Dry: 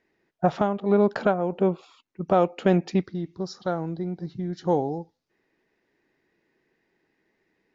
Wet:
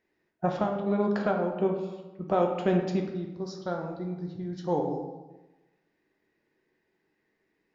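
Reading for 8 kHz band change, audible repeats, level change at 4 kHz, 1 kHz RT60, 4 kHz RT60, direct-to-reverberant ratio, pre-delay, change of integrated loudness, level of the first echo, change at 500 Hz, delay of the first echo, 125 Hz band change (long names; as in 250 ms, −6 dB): can't be measured, no echo audible, −4.0 dB, 1.1 s, 0.75 s, 2.0 dB, 7 ms, −4.5 dB, no echo audible, −4.0 dB, no echo audible, −4.5 dB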